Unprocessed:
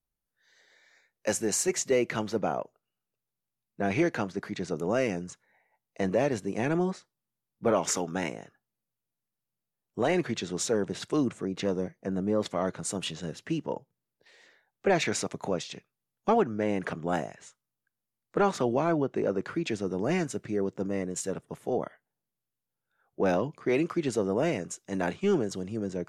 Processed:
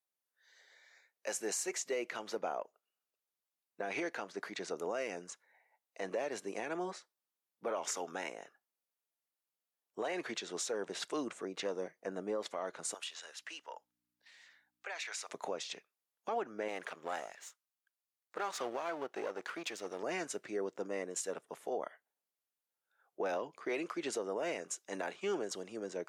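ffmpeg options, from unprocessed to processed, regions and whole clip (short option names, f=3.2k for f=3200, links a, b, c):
-filter_complex "[0:a]asettb=1/sr,asplit=3[a][b][c];[a]atrim=end=12.944[d];[b]atrim=start=12.94:end=15.29,asetpts=PTS-STARTPTS,afade=t=in:d=0.004:c=qsin,afade=t=out:st=2.346:d=0.004:c=qsin,highpass=1.1k,acompressor=threshold=-37dB:ratio=5:attack=3.2:release=140:knee=1:detection=peak,aeval=exprs='val(0)+0.000398*(sin(2*PI*60*n/s)+sin(2*PI*2*60*n/s)/2+sin(2*PI*3*60*n/s)/3+sin(2*PI*4*60*n/s)/4+sin(2*PI*5*60*n/s)/5)':c=same[e];[c]atrim=start=15.286[f];[d][e]acrossfade=d=0.004:c1=hsin:c2=qsin[g];[g][f]acrossfade=d=0.004:c1=qsin:c2=hsin,asettb=1/sr,asplit=3[h][i][j];[h]atrim=end=16.684[k];[i]atrim=start=16.68:end=20.03,asetpts=PTS-STARTPTS,afade=t=in:d=0.004:c=qsin,afade=t=out:st=3.346:d=0.004:c=qsin,aeval=exprs='if(lt(val(0),0),0.447*val(0),val(0))':c=same,tiltshelf=f=760:g=-4[l];[j]atrim=start=20.026[m];[k][l]acrossfade=d=0.004:c1=hsin:c2=qsin[n];[n][m]acrossfade=d=0.004:c1=qsin:c2=hsin,highpass=490,alimiter=level_in=2dB:limit=-24dB:level=0:latency=1:release=175,volume=-2dB,volume=-1.5dB"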